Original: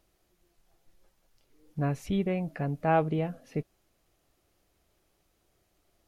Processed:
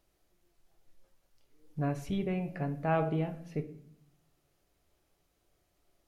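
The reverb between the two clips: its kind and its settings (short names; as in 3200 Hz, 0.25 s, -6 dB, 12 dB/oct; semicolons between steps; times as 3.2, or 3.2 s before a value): shoebox room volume 120 m³, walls mixed, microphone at 0.34 m; gain -4 dB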